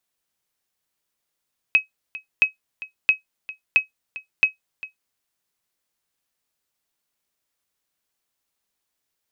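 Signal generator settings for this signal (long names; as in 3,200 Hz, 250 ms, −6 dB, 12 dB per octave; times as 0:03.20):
ping with an echo 2,550 Hz, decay 0.13 s, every 0.67 s, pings 5, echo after 0.40 s, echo −18 dB −6.5 dBFS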